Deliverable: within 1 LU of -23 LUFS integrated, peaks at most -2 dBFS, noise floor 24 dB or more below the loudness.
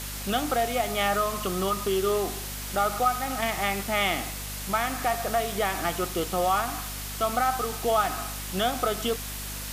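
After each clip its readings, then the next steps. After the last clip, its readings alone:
hum 50 Hz; harmonics up to 250 Hz; hum level -37 dBFS; noise floor -35 dBFS; noise floor target -51 dBFS; loudness -27.0 LUFS; peak -11.5 dBFS; loudness target -23.0 LUFS
-> de-hum 50 Hz, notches 5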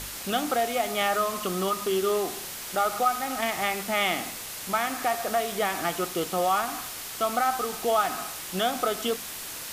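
hum none; noise floor -38 dBFS; noise floor target -51 dBFS
-> denoiser 13 dB, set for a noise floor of -38 dBFS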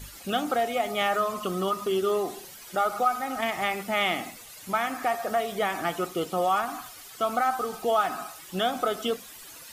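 noise floor -46 dBFS; noise floor target -52 dBFS
-> denoiser 6 dB, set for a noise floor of -46 dBFS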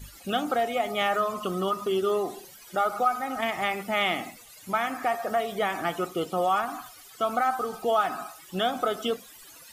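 noise floor -50 dBFS; noise floor target -52 dBFS
-> denoiser 6 dB, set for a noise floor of -50 dBFS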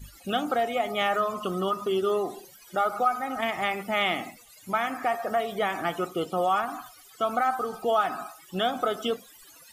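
noise floor -53 dBFS; loudness -28.0 LUFS; peak -11.5 dBFS; loudness target -23.0 LUFS
-> gain +5 dB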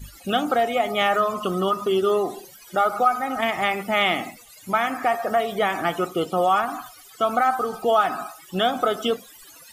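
loudness -23.0 LUFS; peak -6.5 dBFS; noise floor -47 dBFS

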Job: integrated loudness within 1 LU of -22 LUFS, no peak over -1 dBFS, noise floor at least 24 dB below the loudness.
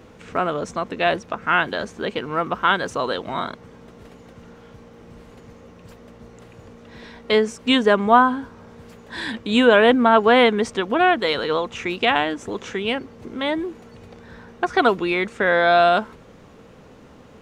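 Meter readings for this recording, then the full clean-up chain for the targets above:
loudness -19.5 LUFS; peak -1.0 dBFS; loudness target -22.0 LUFS
-> gain -2.5 dB

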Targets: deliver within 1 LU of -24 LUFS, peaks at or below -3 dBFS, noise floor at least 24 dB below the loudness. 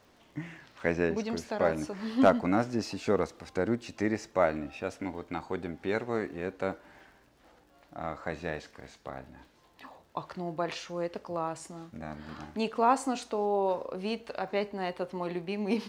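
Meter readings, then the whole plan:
ticks 39/s; loudness -32.0 LUFS; peak -9.5 dBFS; loudness target -24.0 LUFS
-> de-click; gain +8 dB; limiter -3 dBFS

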